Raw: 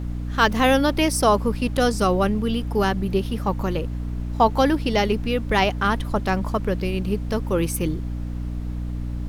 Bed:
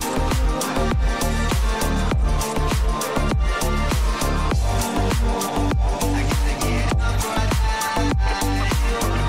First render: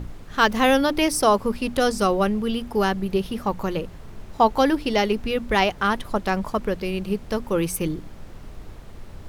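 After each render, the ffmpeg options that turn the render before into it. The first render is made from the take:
-af "bandreject=f=60:t=h:w=6,bandreject=f=120:t=h:w=6,bandreject=f=180:t=h:w=6,bandreject=f=240:t=h:w=6,bandreject=f=300:t=h:w=6"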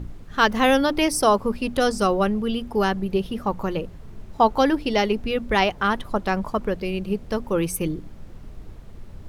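-af "afftdn=nr=6:nf=-41"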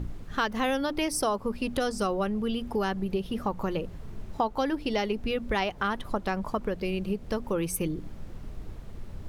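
-af "acompressor=threshold=-27dB:ratio=3"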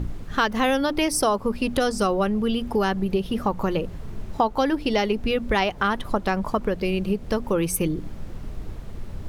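-af "volume=6dB"

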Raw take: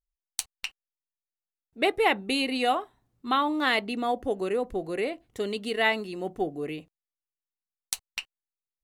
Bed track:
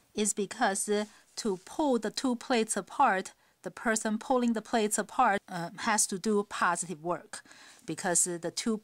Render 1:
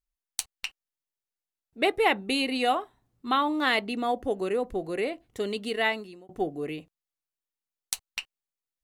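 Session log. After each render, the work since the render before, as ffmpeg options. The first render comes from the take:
-filter_complex "[0:a]asplit=2[a][b];[a]atrim=end=6.29,asetpts=PTS-STARTPTS,afade=t=out:st=5.55:d=0.74:c=qsin[c];[b]atrim=start=6.29,asetpts=PTS-STARTPTS,afade=t=in:d=0.004:c=hsin[d];[c][d]concat=n=2:v=0:a=1"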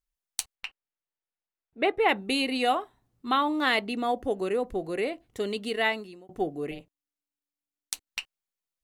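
-filter_complex "[0:a]asettb=1/sr,asplit=3[a][b][c];[a]atrim=end=0.554[d];[b]atrim=start=0.55:end=2.09,asetpts=PTS-STARTPTS,afade=t=in:d=0.004:c=qsin,afade=t=out:st=1.536:d=0.004:c=qsin,bass=f=250:g=-3,treble=f=4k:g=-15[e];[c]atrim=start=2.086[f];[d][e]acrossfade=d=0.004:c1=hsin:c2=qsin[g];[g][f]acrossfade=d=0.004:c1=qsin:c2=hsin,asettb=1/sr,asplit=3[h][i][j];[h]atrim=end=6.714[k];[i]atrim=start=6.71:end=8.07,asetpts=PTS-STARTPTS,afade=t=in:d=0.004:c=qsin,afade=t=out:st=1.356:d=0.004:c=qsin,tremolo=f=290:d=0.919[l];[j]atrim=start=8.066[m];[k][l]acrossfade=d=0.004:c1=hsin:c2=qsin[n];[n][m]acrossfade=d=0.004:c1=qsin:c2=hsin"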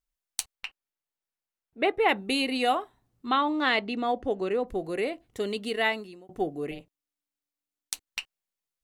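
-filter_complex "[0:a]asettb=1/sr,asplit=3[a][b][c];[a]atrim=end=3.264[d];[b]atrim=start=3.26:end=4.68,asetpts=PTS-STARTPTS,afade=t=in:d=0.004:c=qsin,afade=t=out:st=1.416:d=0.004:c=qsin,lowpass=5.6k[e];[c]atrim=start=4.676[f];[d][e]acrossfade=d=0.004:c1=hsin:c2=qsin[g];[g][f]acrossfade=d=0.004:c1=qsin:c2=hsin"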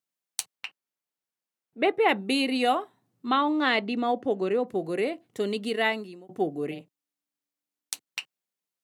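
-af "highpass=f=140:w=0.5412,highpass=f=140:w=1.3066,lowshelf=f=340:g=5"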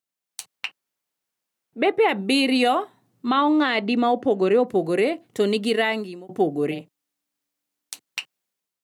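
-af "alimiter=limit=-17.5dB:level=0:latency=1:release=90,dynaudnorm=f=110:g=7:m=7.5dB"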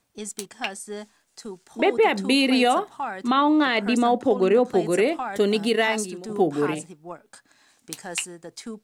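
-filter_complex "[1:a]volume=-5.5dB[a];[0:a][a]amix=inputs=2:normalize=0"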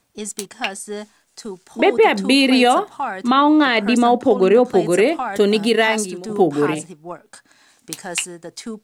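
-af "volume=5.5dB"

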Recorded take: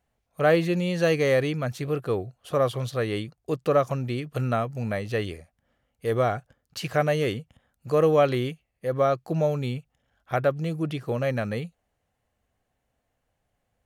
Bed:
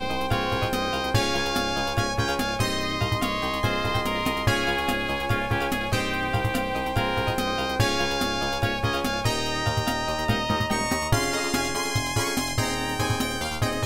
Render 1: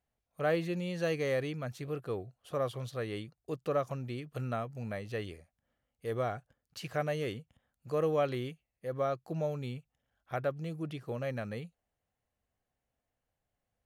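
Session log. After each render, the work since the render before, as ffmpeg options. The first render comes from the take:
-af "volume=-10dB"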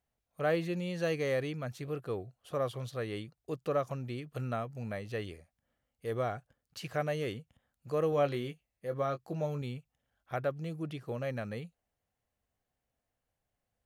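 -filter_complex "[0:a]asettb=1/sr,asplit=3[a][b][c];[a]atrim=end=8.104[d];[b]atrim=start=8.1:end=9.62,asetpts=PTS-STARTPTS,afade=t=in:d=0.004:c=qsin,afade=t=out:st=1.516:d=0.004:c=qsin,asplit=2[e][f];[f]adelay=21,volume=-9dB[g];[e][g]amix=inputs=2:normalize=0,atrim=end_sample=67032[h];[c]atrim=start=9.616[i];[d][h]acrossfade=d=0.004:c1=hsin:c2=qsin[j];[j][i]acrossfade=d=0.004:c1=qsin:c2=hsin"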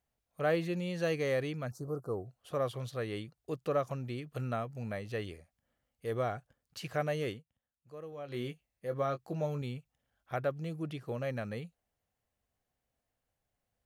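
-filter_complex "[0:a]asettb=1/sr,asplit=3[a][b][c];[a]atrim=end=1.714[d];[b]atrim=start=1.71:end=2.26,asetpts=PTS-STARTPTS,afade=t=in:d=0.004:c=qsin,afade=t=out:st=0.546:d=0.004:c=qsin,asuperstop=centerf=2600:order=8:qfactor=0.7[e];[c]atrim=start=2.256[f];[d][e]acrossfade=d=0.004:c1=hsin:c2=qsin[g];[g][f]acrossfade=d=0.004:c1=qsin:c2=hsin,asplit=3[h][i][j];[h]atrim=end=7.43,asetpts=PTS-STARTPTS,afade=t=out:st=7.29:d=0.14:silence=0.16788[k];[i]atrim=start=7.43:end=8.27,asetpts=PTS-STARTPTS,volume=-15.5dB[l];[j]atrim=start=8.27,asetpts=PTS-STARTPTS,afade=t=in:d=0.14:silence=0.16788[m];[k][l][m]concat=n=3:v=0:a=1"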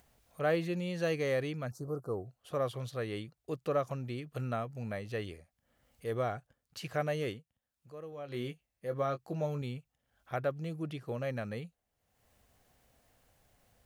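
-af "acompressor=mode=upward:threshold=-53dB:ratio=2.5"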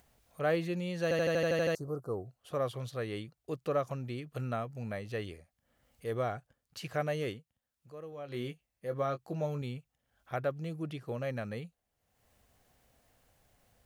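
-filter_complex "[0:a]asplit=10[a][b][c][d][e][f][g][h][i][j];[a]atrim=end=1.112[k];[b]atrim=start=1.028:end=1.112[l];[c]atrim=start=1.028:end=1.112[m];[d]atrim=start=1.028:end=1.112[n];[e]atrim=start=1.028:end=1.112[o];[f]atrim=start=1.028:end=1.112[p];[g]atrim=start=1.028:end=1.112[q];[h]atrim=start=1.028:end=1.112[r];[i]atrim=start=1.028:end=1.112[s];[j]atrim=start=1.748[t];[k][l]acrossfade=d=0.004:c1=hsin:c2=hsin[u];[u][m]acrossfade=d=0.004:c1=hsin:c2=hsin[v];[v][n]acrossfade=d=0.004:c1=hsin:c2=hsin[w];[w][o]acrossfade=d=0.004:c1=hsin:c2=hsin[x];[x][p]acrossfade=d=0.004:c1=hsin:c2=hsin[y];[y][q]acrossfade=d=0.004:c1=hsin:c2=hsin[z];[z][r]acrossfade=d=0.004:c1=hsin:c2=hsin[aa];[aa][s]acrossfade=d=0.004:c1=hsin:c2=hsin[ab];[ab][t]acrossfade=d=0.004:c1=hsin:c2=hsin"

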